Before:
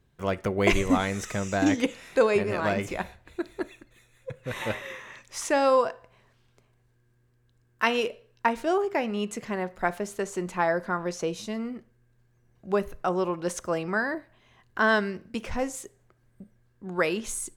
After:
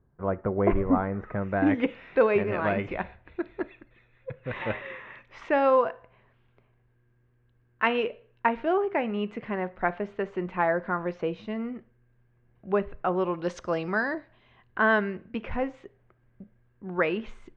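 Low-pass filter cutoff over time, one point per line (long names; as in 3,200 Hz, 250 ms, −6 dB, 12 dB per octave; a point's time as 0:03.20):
low-pass filter 24 dB per octave
0:01.21 1,400 Hz
0:01.93 2,800 Hz
0:13.11 2,800 Hz
0:13.60 4,900 Hz
0:14.13 4,900 Hz
0:14.82 2,800 Hz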